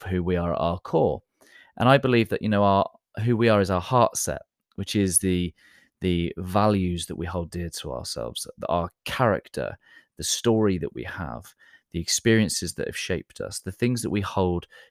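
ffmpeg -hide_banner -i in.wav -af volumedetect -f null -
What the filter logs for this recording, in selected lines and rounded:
mean_volume: -25.0 dB
max_volume: -4.8 dB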